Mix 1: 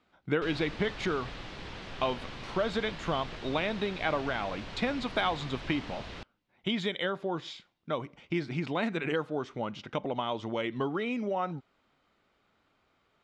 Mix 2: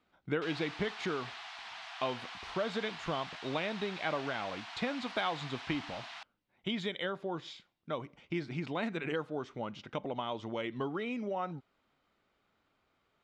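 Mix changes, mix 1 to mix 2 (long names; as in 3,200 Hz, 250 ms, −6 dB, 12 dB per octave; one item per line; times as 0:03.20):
speech −4.5 dB
background: add linear-phase brick-wall high-pass 640 Hz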